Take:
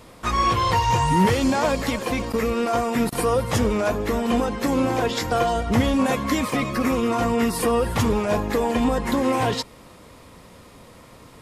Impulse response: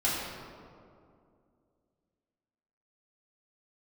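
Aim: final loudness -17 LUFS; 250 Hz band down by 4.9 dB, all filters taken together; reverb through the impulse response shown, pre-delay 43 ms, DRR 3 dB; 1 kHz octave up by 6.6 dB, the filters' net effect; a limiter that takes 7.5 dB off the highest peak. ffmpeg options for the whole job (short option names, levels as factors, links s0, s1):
-filter_complex "[0:a]equalizer=f=250:t=o:g=-6,equalizer=f=1000:t=o:g=8,alimiter=limit=0.237:level=0:latency=1,asplit=2[s0][s1];[1:a]atrim=start_sample=2205,adelay=43[s2];[s1][s2]afir=irnorm=-1:irlink=0,volume=0.224[s3];[s0][s3]amix=inputs=2:normalize=0,volume=1.41"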